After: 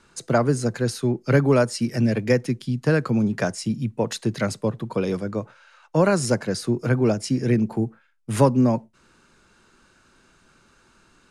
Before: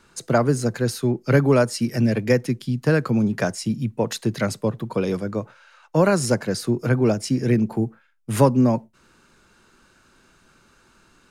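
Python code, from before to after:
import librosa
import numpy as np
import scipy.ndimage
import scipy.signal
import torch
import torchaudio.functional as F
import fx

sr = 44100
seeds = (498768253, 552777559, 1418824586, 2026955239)

y = scipy.signal.sosfilt(scipy.signal.butter(4, 11000.0, 'lowpass', fs=sr, output='sos'), x)
y = y * 10.0 ** (-1.0 / 20.0)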